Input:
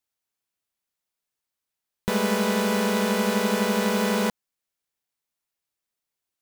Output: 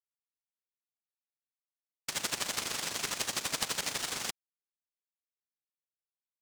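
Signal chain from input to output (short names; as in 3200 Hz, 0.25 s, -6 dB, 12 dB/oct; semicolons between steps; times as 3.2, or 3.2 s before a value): fixed phaser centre 2200 Hz, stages 8; noise vocoder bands 1; power-law curve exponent 2; gain +1.5 dB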